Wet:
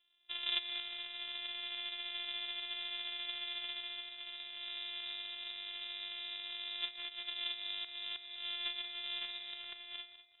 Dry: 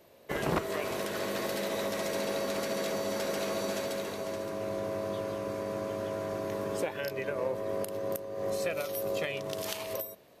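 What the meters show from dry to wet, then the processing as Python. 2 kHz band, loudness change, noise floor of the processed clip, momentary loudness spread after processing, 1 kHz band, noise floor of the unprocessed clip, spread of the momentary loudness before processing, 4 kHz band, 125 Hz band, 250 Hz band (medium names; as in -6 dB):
-5.0 dB, -6.0 dB, -58 dBFS, 6 LU, -17.0 dB, -57 dBFS, 3 LU, +6.5 dB, under -35 dB, under -25 dB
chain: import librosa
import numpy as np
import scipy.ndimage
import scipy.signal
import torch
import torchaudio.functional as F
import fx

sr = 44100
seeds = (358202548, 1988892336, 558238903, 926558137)

p1 = np.r_[np.sort(x[:len(x) // 128 * 128].reshape(-1, 128), axis=1).ravel(), x[len(x) // 128 * 128:]]
p2 = fx.air_absorb(p1, sr, metres=270.0)
p3 = p2 + fx.echo_feedback(p2, sr, ms=198, feedback_pct=52, wet_db=-8.5, dry=0)
p4 = fx.freq_invert(p3, sr, carrier_hz=3800)
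p5 = fx.upward_expand(p4, sr, threshold_db=-51.0, expansion=1.5)
y = F.gain(torch.from_numpy(p5), -4.5).numpy()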